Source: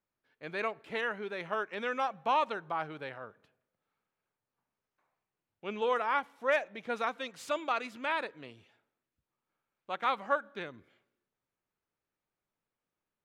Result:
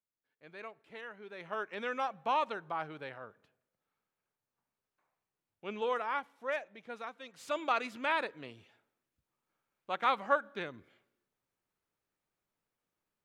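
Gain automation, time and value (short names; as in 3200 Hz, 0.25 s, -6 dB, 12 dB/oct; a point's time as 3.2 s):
1.14 s -12.5 dB
1.64 s -2.5 dB
5.77 s -2.5 dB
7.18 s -11 dB
7.65 s +1 dB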